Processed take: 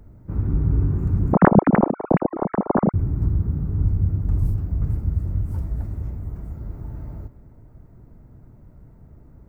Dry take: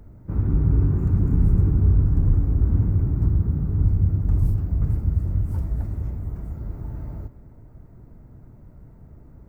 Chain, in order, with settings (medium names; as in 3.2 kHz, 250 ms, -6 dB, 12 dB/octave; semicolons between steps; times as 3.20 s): 1.33–2.94 s: formants replaced by sine waves; trim -1 dB